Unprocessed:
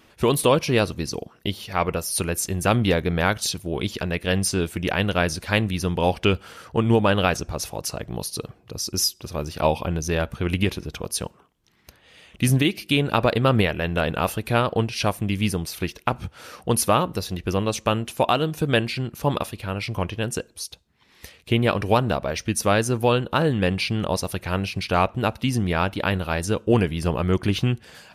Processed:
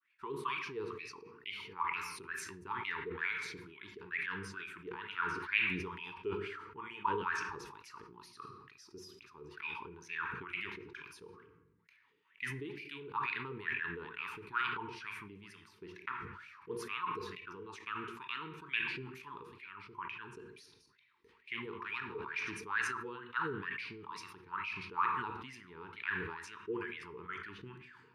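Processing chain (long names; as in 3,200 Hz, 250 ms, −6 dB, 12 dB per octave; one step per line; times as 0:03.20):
0:20.47–0:22.52: delay that plays each chunk backwards 131 ms, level −6 dB
downward expander −48 dBFS
LFO wah 2.2 Hz 470–2,400 Hz, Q 9.8
dynamic equaliser 240 Hz, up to −5 dB, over −51 dBFS, Q 1.3
elliptic band-stop filter 410–940 Hz, stop band 40 dB
rectangular room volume 130 cubic metres, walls mixed, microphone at 0.32 metres
level that may fall only so fast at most 43 dB per second
level −1 dB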